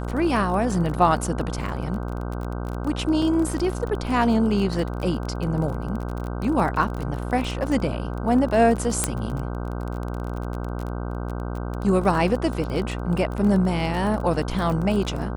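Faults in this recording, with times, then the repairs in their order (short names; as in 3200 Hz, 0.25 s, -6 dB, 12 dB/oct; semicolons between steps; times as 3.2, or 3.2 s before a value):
buzz 60 Hz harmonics 26 -29 dBFS
crackle 28/s -28 dBFS
3.22 gap 2.8 ms
9.04 pop -5 dBFS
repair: de-click; de-hum 60 Hz, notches 26; interpolate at 3.22, 2.8 ms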